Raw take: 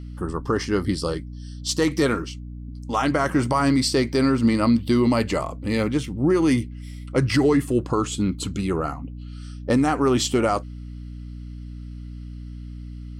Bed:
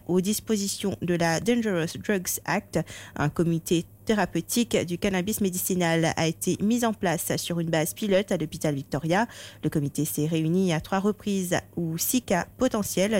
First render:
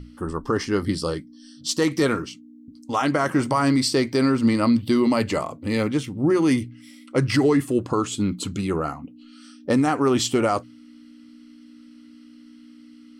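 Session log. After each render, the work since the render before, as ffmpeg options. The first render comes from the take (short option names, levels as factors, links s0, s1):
-af "bandreject=f=60:t=h:w=6,bandreject=f=120:t=h:w=6,bandreject=f=180:t=h:w=6"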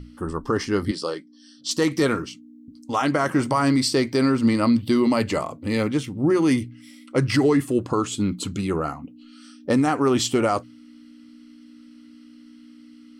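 -filter_complex "[0:a]asettb=1/sr,asplit=3[s0][s1][s2];[s0]atrim=end=0.914[s3];[s1]atrim=start=0.91:end=1.71,asetpts=PTS-STARTPTS,afade=t=in:d=0.004:c=qsin,afade=t=out:st=0.796:d=0.004:c=qsin,highpass=330,lowpass=7200[s4];[s2]atrim=start=1.706[s5];[s3][s4]acrossfade=d=0.004:c1=hsin:c2=qsin[s6];[s6][s5]acrossfade=d=0.004:c1=qsin:c2=hsin"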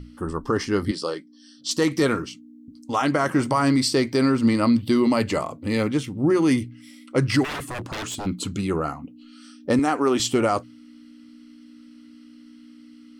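-filter_complex "[0:a]asplit=3[s0][s1][s2];[s0]afade=t=out:st=7.43:d=0.02[s3];[s1]aeval=exprs='0.0531*(abs(mod(val(0)/0.0531+3,4)-2)-1)':c=same,afade=t=in:st=7.43:d=0.02,afade=t=out:st=8.25:d=0.02[s4];[s2]afade=t=in:st=8.25:d=0.02[s5];[s3][s4][s5]amix=inputs=3:normalize=0,asettb=1/sr,asplit=3[s6][s7][s8];[s6]atrim=end=9.794[s9];[s7]atrim=start=9.79:end=10.2,asetpts=PTS-STARTPTS,afade=t=in:d=0.004:c=qsin,afade=t=out:st=0.406:d=0.004:c=qsin,highpass=230[s10];[s8]atrim=start=10.196[s11];[s9][s10]acrossfade=d=0.004:c1=hsin:c2=qsin[s12];[s12][s11]acrossfade=d=0.004:c1=qsin:c2=hsin"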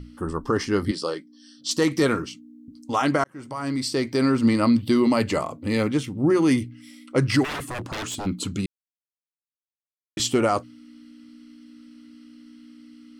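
-filter_complex "[0:a]asplit=4[s0][s1][s2][s3];[s0]atrim=end=3.24,asetpts=PTS-STARTPTS,afade=t=out:st=3.236:d=0.004:c=hsin[s4];[s1]atrim=start=3.24:end=8.66,asetpts=PTS-STARTPTS,afade=t=in:d=1.13,afade=t=out:st=5.416:d=0.004:c=hsin[s5];[s2]atrim=start=8.66:end=10.17,asetpts=PTS-STARTPTS,volume=0[s6];[s3]atrim=start=10.17,asetpts=PTS-STARTPTS,afade=t=in:d=0.004:c=hsin[s7];[s4][s5][s6][s7]concat=n=4:v=0:a=1"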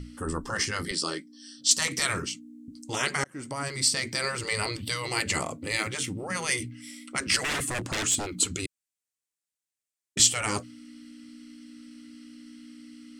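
-af "afftfilt=real='re*lt(hypot(re,im),0.251)':imag='im*lt(hypot(re,im),0.251)':win_size=1024:overlap=0.75,equalizer=f=1000:t=o:w=1:g=-4,equalizer=f=2000:t=o:w=1:g=4,equalizer=f=8000:t=o:w=1:g=11"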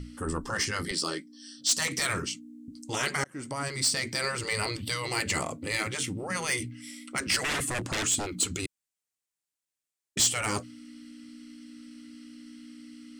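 -af "asoftclip=type=tanh:threshold=0.133"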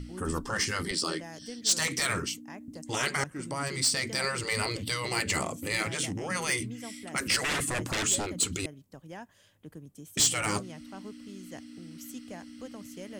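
-filter_complex "[1:a]volume=0.0944[s0];[0:a][s0]amix=inputs=2:normalize=0"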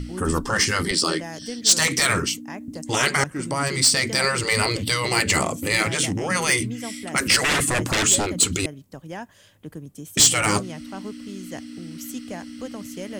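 -af "volume=2.82"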